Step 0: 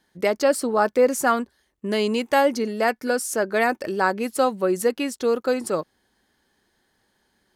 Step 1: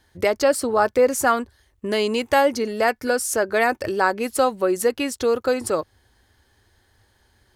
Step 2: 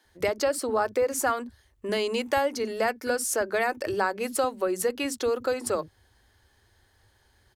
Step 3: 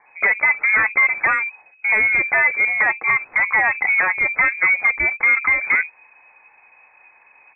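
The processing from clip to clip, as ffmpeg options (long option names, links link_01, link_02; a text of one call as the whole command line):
ffmpeg -i in.wav -filter_complex "[0:a]asplit=2[link_01][link_02];[link_02]acompressor=threshold=-28dB:ratio=6,volume=-1.5dB[link_03];[link_01][link_03]amix=inputs=2:normalize=0,lowshelf=frequency=130:width_type=q:width=3:gain=9" out.wav
ffmpeg -i in.wav -filter_complex "[0:a]acompressor=threshold=-20dB:ratio=2.5,acrossover=split=240[link_01][link_02];[link_01]adelay=50[link_03];[link_03][link_02]amix=inputs=2:normalize=0,volume=-2.5dB" out.wav
ffmpeg -i in.wav -af "aeval=exprs='0.266*sin(PI/2*2.82*val(0)/0.266)':channel_layout=same,lowpass=frequency=2200:width_type=q:width=0.5098,lowpass=frequency=2200:width_type=q:width=0.6013,lowpass=frequency=2200:width_type=q:width=0.9,lowpass=frequency=2200:width_type=q:width=2.563,afreqshift=-2600" out.wav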